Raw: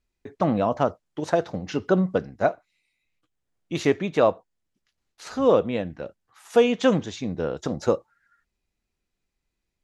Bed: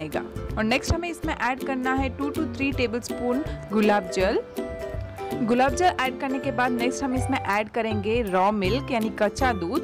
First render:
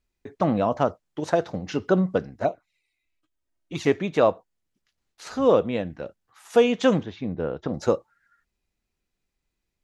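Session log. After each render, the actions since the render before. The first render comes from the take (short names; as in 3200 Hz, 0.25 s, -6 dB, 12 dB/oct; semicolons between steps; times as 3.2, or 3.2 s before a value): 2.4–3.87 envelope flanger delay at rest 3.2 ms, full sweep at -18 dBFS; 7.03–7.74 air absorption 310 m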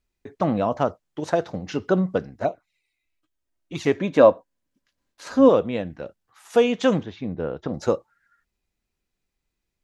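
3.96–5.49 small resonant body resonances 270/550/1000/1600 Hz, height 10 dB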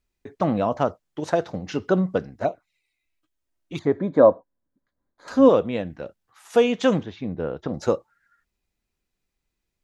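3.79–5.28 running mean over 16 samples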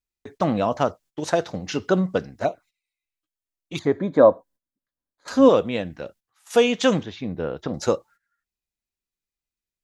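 gate -48 dBFS, range -15 dB; high shelf 2500 Hz +9 dB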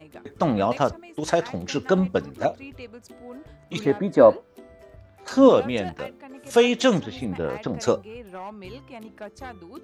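add bed -16 dB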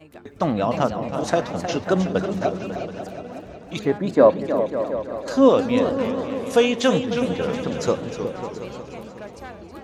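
repeats that get brighter 0.182 s, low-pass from 200 Hz, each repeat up 2 oct, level -6 dB; warbling echo 0.315 s, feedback 34%, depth 181 cents, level -9.5 dB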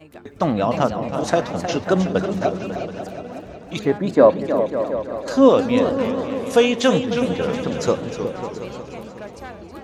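gain +2 dB; limiter -1 dBFS, peak gain reduction 1.5 dB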